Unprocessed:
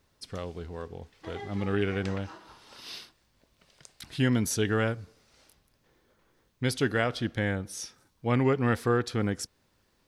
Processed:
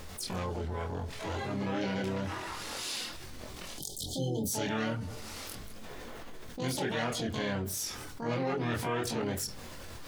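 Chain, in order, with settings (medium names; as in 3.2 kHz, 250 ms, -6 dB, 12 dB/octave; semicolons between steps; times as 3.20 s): spectral selection erased 3.77–4.53 s, 460–3000 Hz; harmony voices +5 st -6 dB, +12 st -5 dB; on a send at -14 dB: reverberation RT60 0.25 s, pre-delay 4 ms; on the sum: chorus voices 6, 0.69 Hz, delay 24 ms, depth 2.7 ms; level flattener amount 70%; trim -7 dB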